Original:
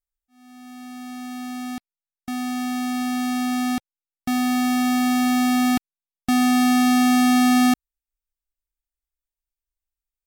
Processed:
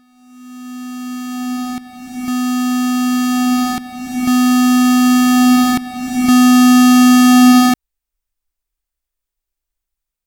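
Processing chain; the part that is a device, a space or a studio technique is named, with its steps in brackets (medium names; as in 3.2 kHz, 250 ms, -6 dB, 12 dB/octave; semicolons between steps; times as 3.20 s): reverse reverb (reverse; reverberation RT60 2.3 s, pre-delay 3 ms, DRR 1 dB; reverse); trim +6 dB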